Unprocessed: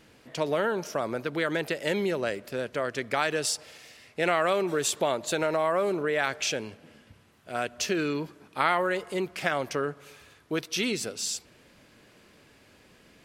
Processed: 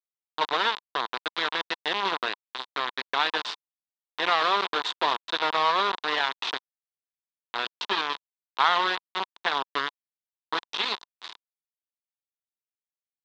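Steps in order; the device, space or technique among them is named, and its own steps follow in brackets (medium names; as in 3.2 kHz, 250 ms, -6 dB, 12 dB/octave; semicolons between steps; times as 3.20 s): hand-held game console (bit crusher 4-bit; cabinet simulation 440–4000 Hz, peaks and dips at 580 Hz -8 dB, 1 kHz +9 dB, 2.3 kHz -4 dB, 3.7 kHz +8 dB); trim +1 dB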